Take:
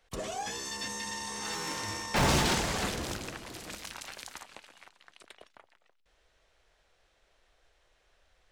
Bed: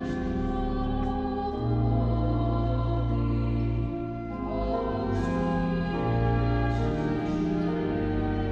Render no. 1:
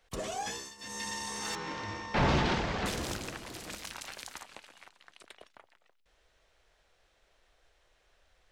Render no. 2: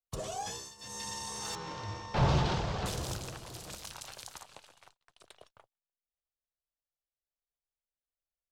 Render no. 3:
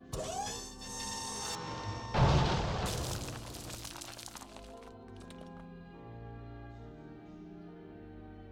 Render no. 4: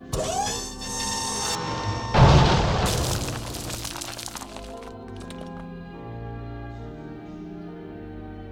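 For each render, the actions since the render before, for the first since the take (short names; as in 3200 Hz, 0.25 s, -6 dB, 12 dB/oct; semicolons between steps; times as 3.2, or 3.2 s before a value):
0.5–1.02 dip -16 dB, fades 0.25 s; 1.55–2.86 air absorption 200 m
gate -56 dBFS, range -34 dB; graphic EQ 125/250/2000 Hz +7/-9/-9 dB
add bed -22.5 dB
gain +12 dB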